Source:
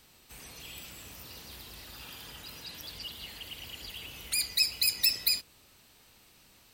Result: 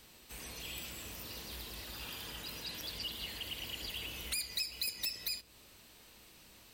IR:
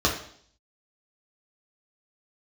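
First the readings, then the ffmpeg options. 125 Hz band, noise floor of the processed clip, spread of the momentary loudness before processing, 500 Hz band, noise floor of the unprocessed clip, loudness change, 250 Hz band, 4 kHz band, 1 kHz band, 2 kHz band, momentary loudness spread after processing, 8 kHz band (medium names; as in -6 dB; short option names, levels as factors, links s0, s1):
0.0 dB, -60 dBFS, 20 LU, +1.5 dB, -61 dBFS, -9.5 dB, +1.5 dB, -7.0 dB, 0.0 dB, -5.5 dB, 21 LU, -7.0 dB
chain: -filter_complex "[0:a]acompressor=threshold=0.0158:ratio=4,aeval=exprs='0.0335*(abs(mod(val(0)/0.0335+3,4)-2)-1)':c=same,asplit=2[s0][s1];[1:a]atrim=start_sample=2205,lowpass=3700[s2];[s1][s2]afir=irnorm=-1:irlink=0,volume=0.0447[s3];[s0][s3]amix=inputs=2:normalize=0,volume=1.12"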